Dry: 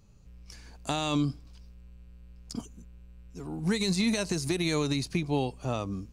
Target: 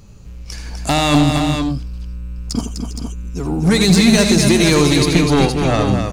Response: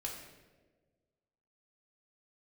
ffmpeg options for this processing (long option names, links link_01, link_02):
-af "aeval=exprs='0.178*sin(PI/2*2*val(0)/0.178)':channel_layout=same,aecho=1:1:80|251|401|467:0.316|0.501|0.2|0.447,volume=6.5dB"